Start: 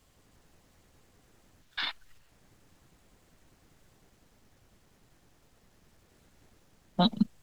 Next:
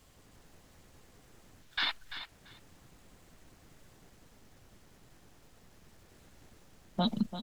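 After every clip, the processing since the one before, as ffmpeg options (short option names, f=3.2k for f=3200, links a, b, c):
-af "alimiter=limit=-24dB:level=0:latency=1:release=19,aecho=1:1:340|680:0.266|0.0479,volume=3.5dB"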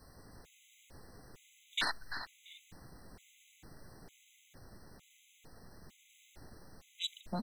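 -af "aeval=exprs='0.1*sin(PI/2*1.58*val(0)/0.1)':c=same,afftfilt=real='re*gt(sin(2*PI*1.1*pts/sr)*(1-2*mod(floor(b*sr/1024/2000),2)),0)':imag='im*gt(sin(2*PI*1.1*pts/sr)*(1-2*mod(floor(b*sr/1024/2000),2)),0)':win_size=1024:overlap=0.75,volume=-3.5dB"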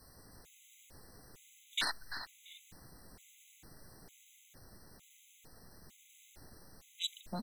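-af "aemphasis=mode=production:type=cd,volume=-2.5dB"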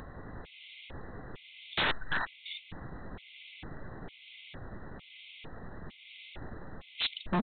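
-af "aresample=8000,aeval=exprs='0.0141*(abs(mod(val(0)/0.0141+3,4)-2)-1)':c=same,aresample=44100,acompressor=mode=upward:threshold=-57dB:ratio=2.5,volume=14dB"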